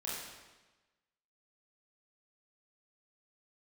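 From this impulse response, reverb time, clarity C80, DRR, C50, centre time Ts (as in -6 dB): 1.2 s, 2.5 dB, -7.5 dB, -0.5 dB, 81 ms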